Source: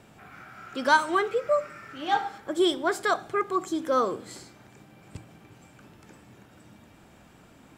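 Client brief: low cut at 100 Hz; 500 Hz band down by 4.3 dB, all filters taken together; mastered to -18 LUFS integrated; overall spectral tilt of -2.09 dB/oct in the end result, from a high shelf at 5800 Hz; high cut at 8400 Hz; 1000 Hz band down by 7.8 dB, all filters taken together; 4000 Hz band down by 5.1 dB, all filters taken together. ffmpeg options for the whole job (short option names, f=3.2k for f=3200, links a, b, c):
-af "highpass=100,lowpass=8.4k,equalizer=f=500:t=o:g=-3.5,equalizer=f=1k:t=o:g=-8.5,equalizer=f=4k:t=o:g=-3.5,highshelf=f=5.8k:g=-7,volume=13.5dB"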